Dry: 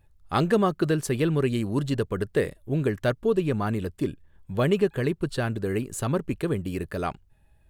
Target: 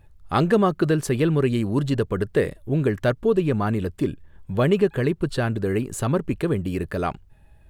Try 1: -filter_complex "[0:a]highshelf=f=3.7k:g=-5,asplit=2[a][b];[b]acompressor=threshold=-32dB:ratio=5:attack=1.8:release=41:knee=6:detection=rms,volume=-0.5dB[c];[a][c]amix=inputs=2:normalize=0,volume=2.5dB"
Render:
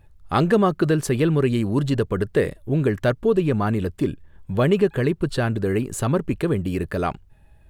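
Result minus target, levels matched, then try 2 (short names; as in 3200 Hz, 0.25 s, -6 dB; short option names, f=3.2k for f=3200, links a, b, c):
compressor: peak gain reduction -6.5 dB
-filter_complex "[0:a]highshelf=f=3.7k:g=-5,asplit=2[a][b];[b]acompressor=threshold=-40dB:ratio=5:attack=1.8:release=41:knee=6:detection=rms,volume=-0.5dB[c];[a][c]amix=inputs=2:normalize=0,volume=2.5dB"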